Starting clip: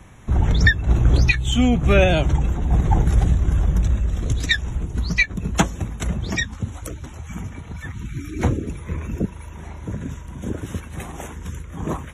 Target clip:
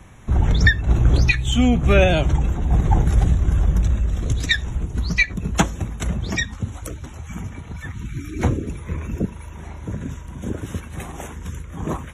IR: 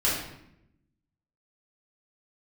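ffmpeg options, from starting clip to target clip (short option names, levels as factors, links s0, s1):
-filter_complex "[0:a]asplit=2[s0][s1];[1:a]atrim=start_sample=2205,atrim=end_sample=3528,asetrate=33957,aresample=44100[s2];[s1][s2]afir=irnorm=-1:irlink=0,volume=0.0224[s3];[s0][s3]amix=inputs=2:normalize=0"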